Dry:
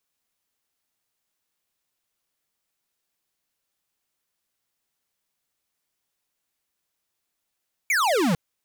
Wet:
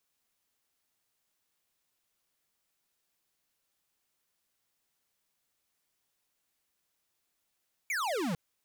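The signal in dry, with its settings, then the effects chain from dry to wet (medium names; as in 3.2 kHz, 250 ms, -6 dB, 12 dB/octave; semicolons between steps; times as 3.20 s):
laser zap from 2.4 kHz, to 150 Hz, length 0.45 s square, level -21 dB
peak limiter -32 dBFS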